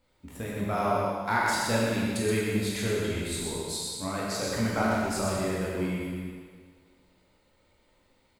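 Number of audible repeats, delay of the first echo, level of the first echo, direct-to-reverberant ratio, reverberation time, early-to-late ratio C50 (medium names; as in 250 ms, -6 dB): 1, 125 ms, -4.5 dB, -6.0 dB, 1.8 s, -3.0 dB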